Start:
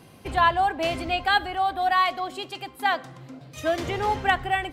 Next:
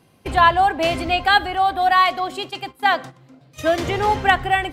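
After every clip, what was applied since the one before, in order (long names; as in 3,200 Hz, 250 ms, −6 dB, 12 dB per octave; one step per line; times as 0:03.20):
noise gate −38 dBFS, range −12 dB
level +6 dB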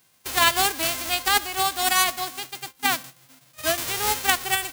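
spectral envelope flattened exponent 0.1
level −5.5 dB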